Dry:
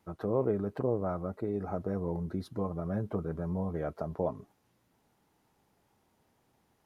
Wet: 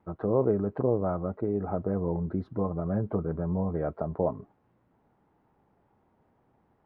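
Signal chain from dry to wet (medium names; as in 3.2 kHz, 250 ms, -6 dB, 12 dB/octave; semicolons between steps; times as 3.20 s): low-pass 1.4 kHz 12 dB/octave; trim +4.5 dB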